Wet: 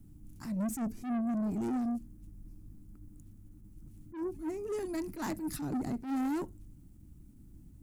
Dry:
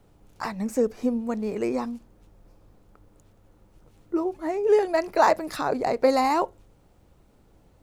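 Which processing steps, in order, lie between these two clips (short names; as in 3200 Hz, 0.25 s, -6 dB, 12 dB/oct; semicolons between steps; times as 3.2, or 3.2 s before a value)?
EQ curve 300 Hz 0 dB, 480 Hz -27 dB, 1000 Hz -23 dB, 1900 Hz -18 dB, 4000 Hz -17 dB, 10000 Hz -2 dB; soft clip -35.5 dBFS, distortion -7 dB; attack slew limiter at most 140 dB/s; gain +5.5 dB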